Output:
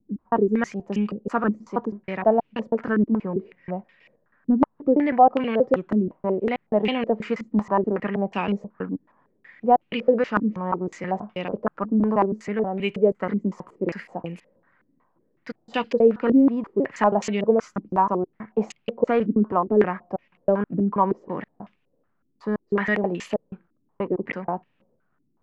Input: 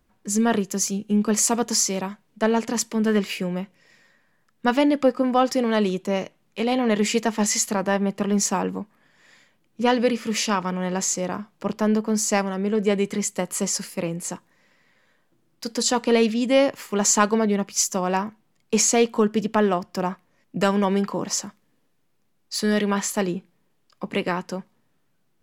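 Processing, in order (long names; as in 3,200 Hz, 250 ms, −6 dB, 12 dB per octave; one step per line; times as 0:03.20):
slices reordered back to front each 160 ms, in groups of 2
low-pass on a step sequencer 5.4 Hz 280–2,700 Hz
level −3.5 dB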